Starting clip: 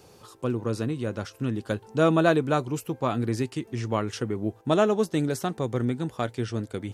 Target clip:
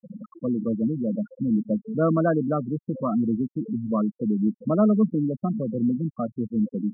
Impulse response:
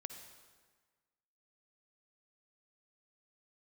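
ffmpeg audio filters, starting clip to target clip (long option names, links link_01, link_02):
-af "aeval=exprs='val(0)+0.5*0.0531*sgn(val(0))':channel_layout=same,highpass=frequency=150:width=0.5412,highpass=frequency=150:width=1.3066,equalizer=frequency=210:width_type=q:width=4:gain=9,equalizer=frequency=390:width_type=q:width=4:gain=-9,equalizer=frequency=830:width_type=q:width=4:gain=-9,equalizer=frequency=1500:width_type=q:width=4:gain=-5,lowpass=frequency=2200:width=0.5412,lowpass=frequency=2200:width=1.3066,afftfilt=real='re*gte(hypot(re,im),0.126)':imag='im*gte(hypot(re,im),0.126)':win_size=1024:overlap=0.75"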